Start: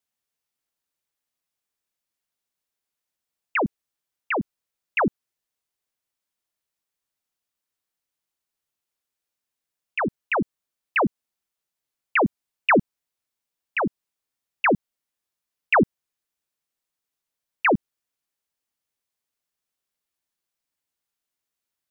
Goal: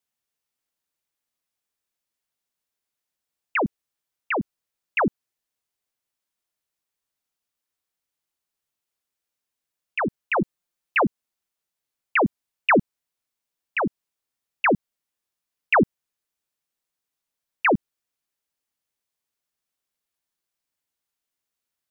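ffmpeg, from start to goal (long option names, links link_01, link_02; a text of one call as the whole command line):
ffmpeg -i in.wav -filter_complex "[0:a]asettb=1/sr,asplit=3[link_01][link_02][link_03];[link_01]atrim=end=10.354[link_04];[link_02]atrim=start=10.35:end=11.03,asetpts=PTS-STARTPTS,afade=type=in:duration=0.004:curve=qsin,afade=type=out:start_time=0.676:duration=0.004:curve=qsin,aecho=1:1:5.7:0.52,atrim=end_sample=29988[link_05];[link_03]atrim=start=11.026[link_06];[link_04][link_05]acrossfade=duration=0.004:curve1=hsin:curve2=qsin[link_07];[link_07][link_06]acrossfade=duration=0.004:curve1=qsin:curve2=hsin" out.wav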